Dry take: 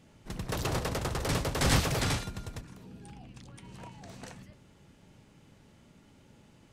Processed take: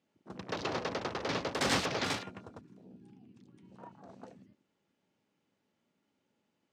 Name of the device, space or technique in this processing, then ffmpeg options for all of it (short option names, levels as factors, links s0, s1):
over-cleaned archive recording: -af "highpass=200,lowpass=6900,equalizer=f=140:w=3.9:g=-6,afwtdn=0.00501,volume=0.891"